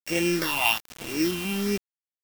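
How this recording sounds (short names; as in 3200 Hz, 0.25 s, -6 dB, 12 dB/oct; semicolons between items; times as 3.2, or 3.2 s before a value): a buzz of ramps at a fixed pitch in blocks of 16 samples; phasing stages 6, 1.2 Hz, lowest notch 460–1200 Hz; a quantiser's noise floor 6-bit, dither none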